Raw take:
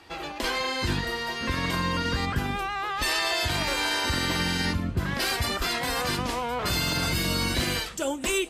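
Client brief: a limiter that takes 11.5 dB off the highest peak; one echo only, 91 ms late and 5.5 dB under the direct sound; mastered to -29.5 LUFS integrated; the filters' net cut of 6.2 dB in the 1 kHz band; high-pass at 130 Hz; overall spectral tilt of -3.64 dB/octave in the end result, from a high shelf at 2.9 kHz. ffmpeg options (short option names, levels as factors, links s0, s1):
-af "highpass=130,equalizer=f=1000:t=o:g=-7.5,highshelf=f=2900:g=-3.5,alimiter=level_in=1.68:limit=0.0631:level=0:latency=1,volume=0.596,aecho=1:1:91:0.531,volume=1.88"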